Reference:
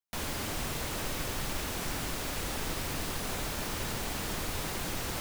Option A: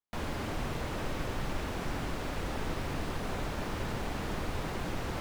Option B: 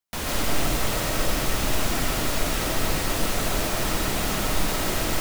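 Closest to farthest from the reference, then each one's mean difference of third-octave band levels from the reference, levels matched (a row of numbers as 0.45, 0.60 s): B, A; 1.5, 5.0 dB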